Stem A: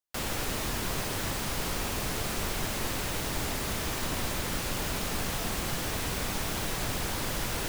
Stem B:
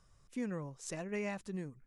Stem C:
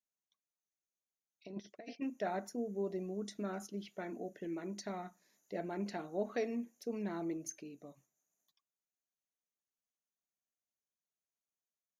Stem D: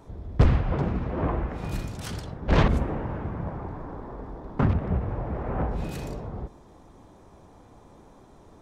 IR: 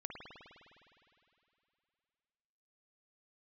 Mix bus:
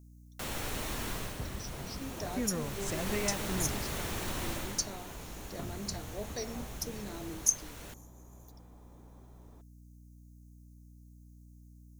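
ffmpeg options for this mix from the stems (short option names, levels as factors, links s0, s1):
-filter_complex "[0:a]bandreject=f=4900:w=15,adelay=250,volume=1.06,afade=t=out:st=1.08:d=0.33:silence=0.375837,afade=t=in:st=2.56:d=0.55:silence=0.375837,afade=t=out:st=4.48:d=0.41:silence=0.281838,asplit=2[s0][s1];[s1]volume=0.708[s2];[1:a]adelay=2000,volume=1.41[s3];[2:a]aexciter=amount=11.1:drive=7.3:freq=4400,volume=0.596[s4];[3:a]acompressor=threshold=0.01:ratio=2,adelay=1000,volume=0.376[s5];[4:a]atrim=start_sample=2205[s6];[s2][s6]afir=irnorm=-1:irlink=0[s7];[s0][s3][s4][s5][s7]amix=inputs=5:normalize=0,aeval=exprs='val(0)+0.00224*(sin(2*PI*60*n/s)+sin(2*PI*2*60*n/s)/2+sin(2*PI*3*60*n/s)/3+sin(2*PI*4*60*n/s)/4+sin(2*PI*5*60*n/s)/5)':c=same"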